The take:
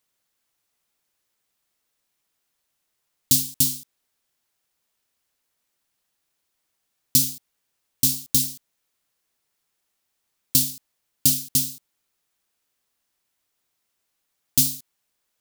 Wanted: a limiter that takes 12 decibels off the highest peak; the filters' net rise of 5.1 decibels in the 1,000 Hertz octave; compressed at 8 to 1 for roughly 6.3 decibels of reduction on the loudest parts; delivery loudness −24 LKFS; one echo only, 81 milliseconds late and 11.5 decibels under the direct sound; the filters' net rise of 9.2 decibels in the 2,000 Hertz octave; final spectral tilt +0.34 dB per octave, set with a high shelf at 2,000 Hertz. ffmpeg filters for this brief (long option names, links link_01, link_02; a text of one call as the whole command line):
ffmpeg -i in.wav -af "equalizer=frequency=1000:width_type=o:gain=3.5,highshelf=frequency=2000:gain=6,equalizer=frequency=2000:width_type=o:gain=7.5,acompressor=threshold=-14dB:ratio=8,alimiter=limit=-10.5dB:level=0:latency=1,aecho=1:1:81:0.266,volume=0.5dB" out.wav